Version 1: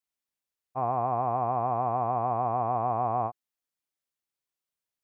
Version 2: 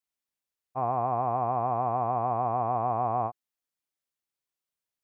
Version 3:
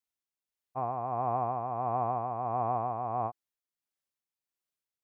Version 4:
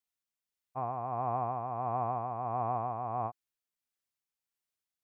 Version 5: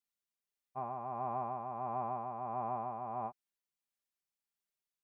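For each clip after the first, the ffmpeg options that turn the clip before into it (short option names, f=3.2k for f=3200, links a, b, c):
-af anull
-af "tremolo=f=1.5:d=0.44,volume=-2dB"
-af "equalizer=f=450:w=0.59:g=-3.5"
-af "aecho=1:1:5:0.65,volume=-5.5dB"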